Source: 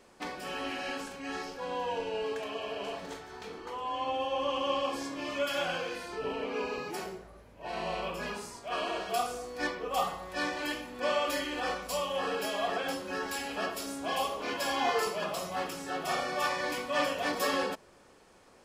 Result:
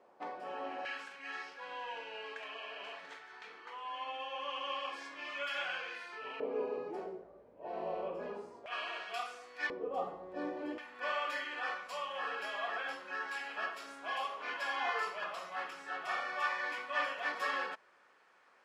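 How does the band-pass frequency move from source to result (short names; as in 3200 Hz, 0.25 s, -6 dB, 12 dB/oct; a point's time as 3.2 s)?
band-pass, Q 1.4
720 Hz
from 0.85 s 1900 Hz
from 6.4 s 480 Hz
from 8.66 s 2000 Hz
from 9.7 s 390 Hz
from 10.78 s 1600 Hz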